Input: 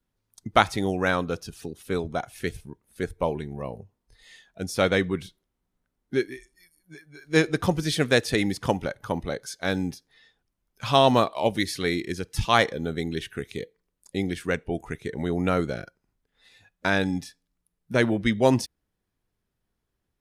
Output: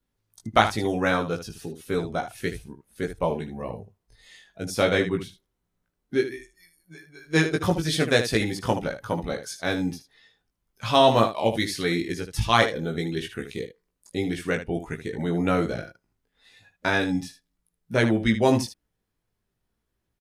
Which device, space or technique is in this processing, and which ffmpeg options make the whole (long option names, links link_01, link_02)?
slapback doubling: -filter_complex "[0:a]asplit=3[link_01][link_02][link_03];[link_02]adelay=18,volume=-3.5dB[link_04];[link_03]adelay=76,volume=-10dB[link_05];[link_01][link_04][link_05]amix=inputs=3:normalize=0,volume=-1dB"